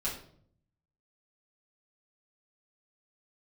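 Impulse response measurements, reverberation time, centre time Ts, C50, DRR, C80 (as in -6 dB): 0.60 s, 30 ms, 6.5 dB, -8.0 dB, 10.5 dB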